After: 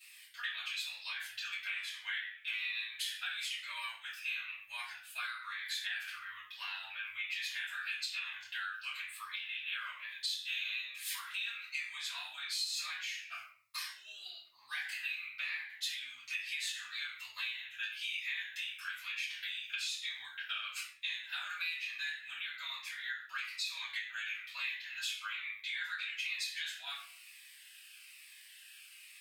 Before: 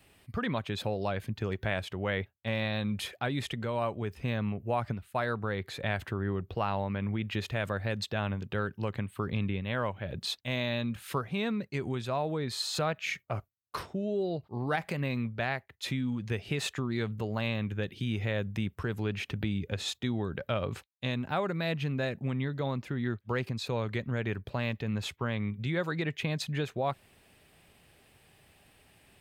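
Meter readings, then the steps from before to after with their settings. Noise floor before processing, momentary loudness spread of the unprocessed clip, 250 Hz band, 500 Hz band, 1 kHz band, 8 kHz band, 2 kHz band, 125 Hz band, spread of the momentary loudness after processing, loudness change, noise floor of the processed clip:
-66 dBFS, 3 LU, under -40 dB, under -40 dB, -13.0 dB, +1.0 dB, 0.0 dB, under -40 dB, 9 LU, -5.5 dB, -57 dBFS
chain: in parallel at -1 dB: level quantiser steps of 16 dB; on the sum: inverse Chebyshev high-pass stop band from 510 Hz, stop band 60 dB; shoebox room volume 61 m³, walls mixed, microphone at 3 m; compressor 6:1, threshold -29 dBFS, peak gain reduction 13.5 dB; cascading phaser falling 1.1 Hz; gain -5.5 dB

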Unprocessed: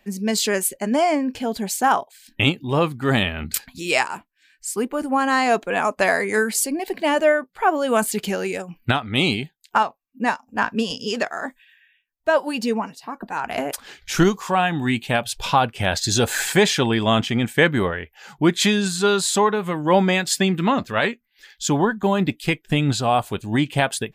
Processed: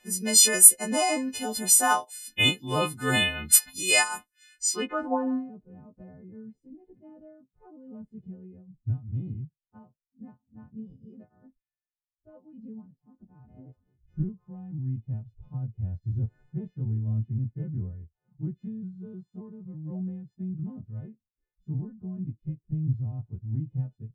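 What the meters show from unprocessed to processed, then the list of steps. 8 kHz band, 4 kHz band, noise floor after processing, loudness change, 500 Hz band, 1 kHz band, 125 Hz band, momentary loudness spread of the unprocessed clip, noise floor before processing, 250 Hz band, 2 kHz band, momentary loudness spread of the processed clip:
+4.0 dB, -6.0 dB, under -85 dBFS, -3.0 dB, -15.5 dB, -13.0 dB, -5.0 dB, 9 LU, -66 dBFS, -12.0 dB, -10.0 dB, 22 LU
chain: frequency quantiser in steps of 3 st; low-pass sweep 10000 Hz -> 120 Hz, 4.56–5.52; gain -7.5 dB

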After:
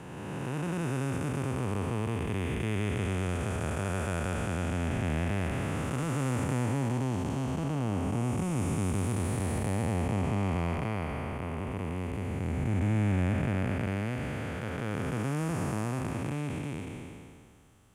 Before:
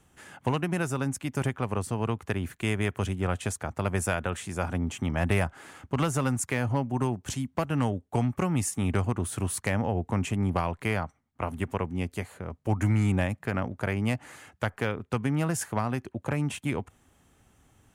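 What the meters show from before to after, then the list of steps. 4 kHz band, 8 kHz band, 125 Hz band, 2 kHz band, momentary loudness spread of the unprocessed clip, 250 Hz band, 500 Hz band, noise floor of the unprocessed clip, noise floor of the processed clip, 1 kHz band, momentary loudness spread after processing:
-3.5 dB, -7.0 dB, -1.0 dB, -4.0 dB, 7 LU, -1.5 dB, -3.0 dB, -66 dBFS, -45 dBFS, -3.5 dB, 6 LU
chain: time blur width 0.843 s; gain +2 dB

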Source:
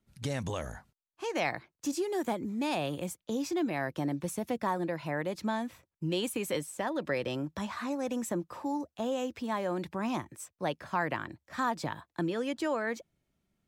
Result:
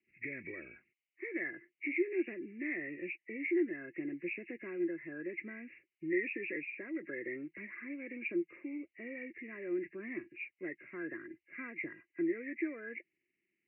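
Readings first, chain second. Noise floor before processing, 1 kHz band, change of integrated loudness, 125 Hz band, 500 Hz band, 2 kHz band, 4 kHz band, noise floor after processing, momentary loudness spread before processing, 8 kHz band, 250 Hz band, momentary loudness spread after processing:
under -85 dBFS, -27.0 dB, -5.5 dB, -19.5 dB, -6.5 dB, -1.0 dB, under -25 dB, under -85 dBFS, 6 LU, under -35 dB, -4.5 dB, 11 LU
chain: nonlinear frequency compression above 1600 Hz 4:1; double band-pass 860 Hz, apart 2.6 oct; gain +2.5 dB

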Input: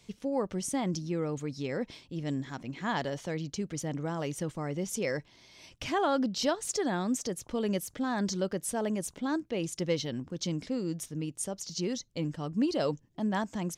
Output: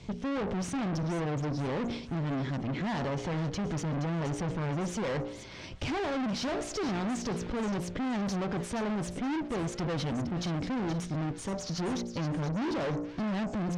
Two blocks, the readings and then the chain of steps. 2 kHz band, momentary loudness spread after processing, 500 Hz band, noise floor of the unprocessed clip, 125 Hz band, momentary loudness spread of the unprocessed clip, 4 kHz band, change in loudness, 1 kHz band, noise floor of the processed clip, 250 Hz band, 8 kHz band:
+0.5 dB, 3 LU, -2.0 dB, -62 dBFS, +4.5 dB, 6 LU, -1.5 dB, 0.0 dB, -0.5 dB, -43 dBFS, +0.5 dB, -6.0 dB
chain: low shelf 490 Hz +10 dB; de-hum 58.96 Hz, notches 14; in parallel at +1 dB: limiter -19 dBFS, peak gain reduction 7.5 dB; on the sum: tube stage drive 33 dB, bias 0.35; air absorption 100 m; on a send: thin delay 0.473 s, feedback 36%, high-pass 1500 Hz, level -10 dB; on the sum: gain +3 dB

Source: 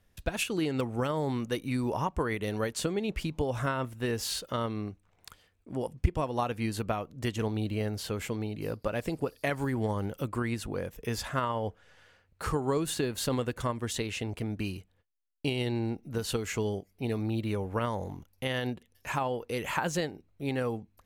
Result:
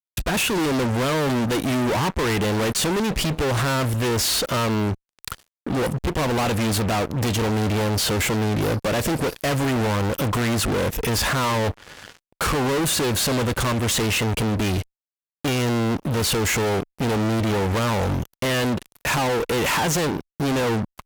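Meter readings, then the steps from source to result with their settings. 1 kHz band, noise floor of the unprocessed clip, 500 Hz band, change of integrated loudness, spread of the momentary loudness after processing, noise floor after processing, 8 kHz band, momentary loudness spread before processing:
+10.0 dB, -69 dBFS, +9.0 dB, +10.5 dB, 5 LU, under -85 dBFS, +14.5 dB, 6 LU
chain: fuzz box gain 48 dB, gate -57 dBFS; added harmonics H 7 -32 dB, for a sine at -9.5 dBFS; gain -7.5 dB

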